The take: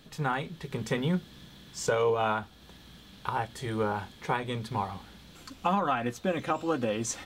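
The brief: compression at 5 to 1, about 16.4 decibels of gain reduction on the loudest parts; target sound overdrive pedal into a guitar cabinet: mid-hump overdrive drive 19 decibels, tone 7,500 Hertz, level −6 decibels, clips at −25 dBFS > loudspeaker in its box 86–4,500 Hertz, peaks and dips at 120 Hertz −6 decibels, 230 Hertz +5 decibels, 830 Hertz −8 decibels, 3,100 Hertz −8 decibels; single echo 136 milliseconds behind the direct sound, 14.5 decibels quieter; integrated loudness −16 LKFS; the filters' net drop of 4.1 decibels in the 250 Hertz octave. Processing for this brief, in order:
parametric band 250 Hz −8 dB
downward compressor 5 to 1, threshold −43 dBFS
single-tap delay 136 ms −14.5 dB
mid-hump overdrive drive 19 dB, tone 7,500 Hz, level −6 dB, clips at −25 dBFS
loudspeaker in its box 86–4,500 Hz, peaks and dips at 120 Hz −6 dB, 230 Hz +5 dB, 830 Hz −8 dB, 3,100 Hz −8 dB
level +24 dB

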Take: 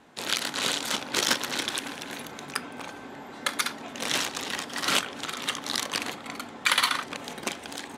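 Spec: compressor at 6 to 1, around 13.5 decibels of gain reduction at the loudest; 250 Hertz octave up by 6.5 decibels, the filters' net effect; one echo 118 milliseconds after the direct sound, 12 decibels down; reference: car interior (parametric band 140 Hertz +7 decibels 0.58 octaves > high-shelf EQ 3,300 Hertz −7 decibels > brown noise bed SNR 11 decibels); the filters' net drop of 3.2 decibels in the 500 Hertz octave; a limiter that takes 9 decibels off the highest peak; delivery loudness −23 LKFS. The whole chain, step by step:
parametric band 250 Hz +8.5 dB
parametric band 500 Hz −7 dB
downward compressor 6 to 1, threshold −34 dBFS
brickwall limiter −24.5 dBFS
parametric band 140 Hz +7 dB 0.58 octaves
high-shelf EQ 3,300 Hz −7 dB
single-tap delay 118 ms −12 dB
brown noise bed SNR 11 dB
level +17 dB

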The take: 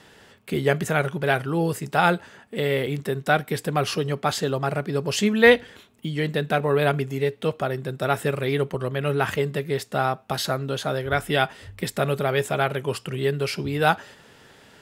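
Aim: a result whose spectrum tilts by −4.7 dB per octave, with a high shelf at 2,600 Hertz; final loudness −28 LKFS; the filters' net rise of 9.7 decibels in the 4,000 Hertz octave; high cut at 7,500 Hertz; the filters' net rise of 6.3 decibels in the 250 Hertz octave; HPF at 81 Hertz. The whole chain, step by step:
high-pass filter 81 Hz
low-pass filter 7,500 Hz
parametric band 250 Hz +8.5 dB
high-shelf EQ 2,600 Hz +7 dB
parametric band 4,000 Hz +6.5 dB
level −8 dB

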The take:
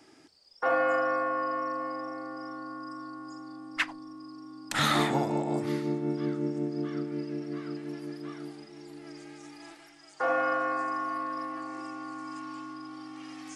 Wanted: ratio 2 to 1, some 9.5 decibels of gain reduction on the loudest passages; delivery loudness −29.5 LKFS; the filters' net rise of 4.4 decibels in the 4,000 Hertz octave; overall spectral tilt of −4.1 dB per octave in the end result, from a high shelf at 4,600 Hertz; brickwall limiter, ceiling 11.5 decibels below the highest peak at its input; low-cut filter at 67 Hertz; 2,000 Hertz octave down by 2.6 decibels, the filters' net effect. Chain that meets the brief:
high-pass filter 67 Hz
parametric band 2,000 Hz −5 dB
parametric band 4,000 Hz +8 dB
high-shelf EQ 4,600 Hz −3.5 dB
downward compressor 2 to 1, threshold −39 dBFS
level +12 dB
brickwall limiter −19.5 dBFS

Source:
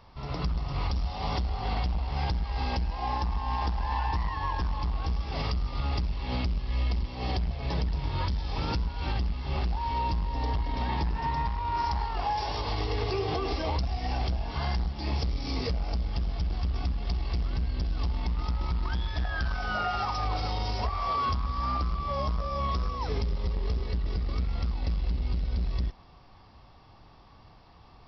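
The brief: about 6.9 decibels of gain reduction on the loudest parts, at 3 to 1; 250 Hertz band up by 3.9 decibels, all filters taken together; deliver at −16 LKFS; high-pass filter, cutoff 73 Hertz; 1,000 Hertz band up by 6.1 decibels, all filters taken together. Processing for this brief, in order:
high-pass filter 73 Hz
parametric band 250 Hz +5 dB
parametric band 1,000 Hz +7 dB
downward compressor 3 to 1, threshold −29 dBFS
level +17 dB

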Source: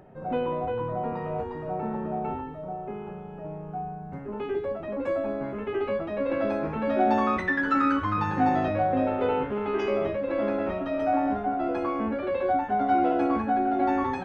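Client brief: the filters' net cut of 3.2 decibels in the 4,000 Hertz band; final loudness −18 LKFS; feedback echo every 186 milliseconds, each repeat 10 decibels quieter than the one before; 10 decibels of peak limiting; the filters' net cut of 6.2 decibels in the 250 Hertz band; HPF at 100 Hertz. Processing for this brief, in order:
high-pass filter 100 Hz
parametric band 250 Hz −7.5 dB
parametric band 4,000 Hz −4.5 dB
brickwall limiter −23 dBFS
repeating echo 186 ms, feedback 32%, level −10 dB
level +14 dB

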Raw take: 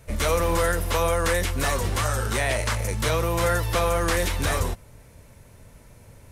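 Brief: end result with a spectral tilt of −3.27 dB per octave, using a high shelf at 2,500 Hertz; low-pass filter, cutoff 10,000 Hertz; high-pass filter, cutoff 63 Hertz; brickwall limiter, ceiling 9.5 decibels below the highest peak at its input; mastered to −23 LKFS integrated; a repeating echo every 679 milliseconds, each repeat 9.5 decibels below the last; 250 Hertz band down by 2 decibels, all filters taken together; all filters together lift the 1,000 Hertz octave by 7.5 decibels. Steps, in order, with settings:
high-pass filter 63 Hz
low-pass filter 10,000 Hz
parametric band 250 Hz −4 dB
parametric band 1,000 Hz +8.5 dB
high-shelf EQ 2,500 Hz +4.5 dB
brickwall limiter −16.5 dBFS
repeating echo 679 ms, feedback 33%, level −9.5 dB
level +3 dB

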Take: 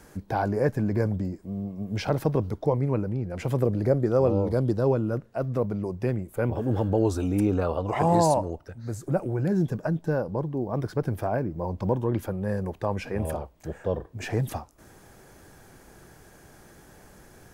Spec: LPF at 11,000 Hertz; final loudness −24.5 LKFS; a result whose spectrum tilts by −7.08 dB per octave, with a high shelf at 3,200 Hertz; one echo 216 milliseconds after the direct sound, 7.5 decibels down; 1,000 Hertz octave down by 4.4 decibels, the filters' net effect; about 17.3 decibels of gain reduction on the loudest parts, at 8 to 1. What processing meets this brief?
low-pass filter 11,000 Hz
parametric band 1,000 Hz −5.5 dB
high-shelf EQ 3,200 Hz −5 dB
downward compressor 8 to 1, threshold −37 dBFS
single-tap delay 216 ms −7.5 dB
level +16.5 dB

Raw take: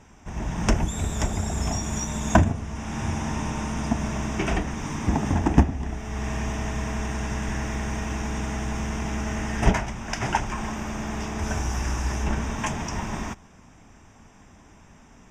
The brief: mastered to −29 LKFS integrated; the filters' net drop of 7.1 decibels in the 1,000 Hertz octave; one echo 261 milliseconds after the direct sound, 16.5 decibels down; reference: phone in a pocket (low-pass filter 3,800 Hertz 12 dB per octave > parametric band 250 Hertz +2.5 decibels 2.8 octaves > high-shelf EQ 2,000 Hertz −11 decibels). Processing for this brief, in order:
low-pass filter 3,800 Hz 12 dB per octave
parametric band 250 Hz +2.5 dB 2.8 octaves
parametric band 1,000 Hz −8 dB
high-shelf EQ 2,000 Hz −11 dB
single-tap delay 261 ms −16.5 dB
level −2 dB

